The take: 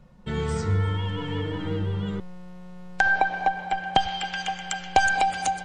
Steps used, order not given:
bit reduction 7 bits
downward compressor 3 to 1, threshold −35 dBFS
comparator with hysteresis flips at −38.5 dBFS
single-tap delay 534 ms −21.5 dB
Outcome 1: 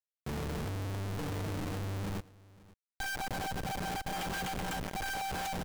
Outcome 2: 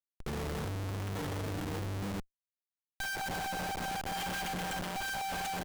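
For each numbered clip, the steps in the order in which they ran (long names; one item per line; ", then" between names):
downward compressor, then comparator with hysteresis, then bit reduction, then single-tap delay
single-tap delay, then downward compressor, then bit reduction, then comparator with hysteresis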